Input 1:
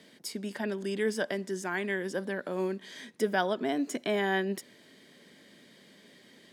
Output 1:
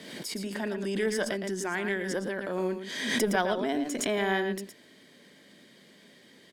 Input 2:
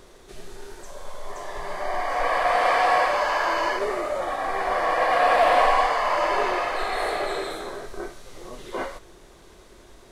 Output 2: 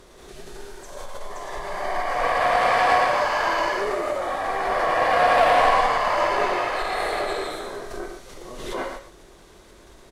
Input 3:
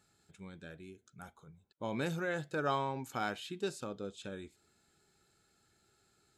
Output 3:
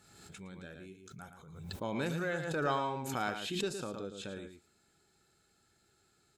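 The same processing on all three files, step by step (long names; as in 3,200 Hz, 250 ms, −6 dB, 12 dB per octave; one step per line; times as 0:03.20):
single-tap delay 113 ms −8 dB
harmonic generator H 6 −25 dB, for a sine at −5 dBFS
background raised ahead of every attack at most 45 dB per second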